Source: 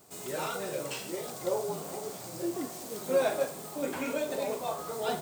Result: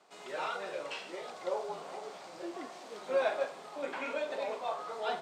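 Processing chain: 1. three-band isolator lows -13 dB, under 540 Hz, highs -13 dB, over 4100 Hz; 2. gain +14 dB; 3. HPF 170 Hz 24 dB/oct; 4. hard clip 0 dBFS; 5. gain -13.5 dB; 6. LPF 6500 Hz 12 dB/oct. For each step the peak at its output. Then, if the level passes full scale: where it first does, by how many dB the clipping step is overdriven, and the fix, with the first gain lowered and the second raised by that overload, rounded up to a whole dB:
-18.5, -4.5, -5.5, -5.5, -19.0, -19.0 dBFS; no overload

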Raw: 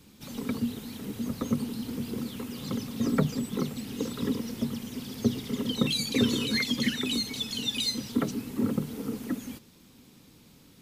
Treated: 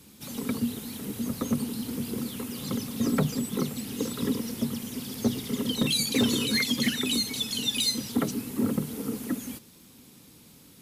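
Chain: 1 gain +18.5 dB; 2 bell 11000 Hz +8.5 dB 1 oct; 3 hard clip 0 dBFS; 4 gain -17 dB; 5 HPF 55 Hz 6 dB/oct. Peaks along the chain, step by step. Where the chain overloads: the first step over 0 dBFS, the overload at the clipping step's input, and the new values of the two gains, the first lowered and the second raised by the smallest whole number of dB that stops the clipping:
+7.5, +8.0, 0.0, -17.0, -14.5 dBFS; step 1, 8.0 dB; step 1 +10.5 dB, step 4 -9 dB

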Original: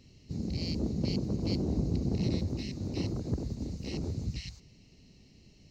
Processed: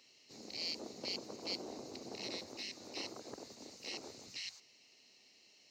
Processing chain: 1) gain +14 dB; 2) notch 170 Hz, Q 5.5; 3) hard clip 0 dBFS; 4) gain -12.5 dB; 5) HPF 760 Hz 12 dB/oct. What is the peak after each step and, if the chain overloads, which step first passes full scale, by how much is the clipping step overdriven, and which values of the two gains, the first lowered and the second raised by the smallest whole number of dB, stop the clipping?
-4.0, -3.5, -3.5, -16.0, -27.5 dBFS; no overload

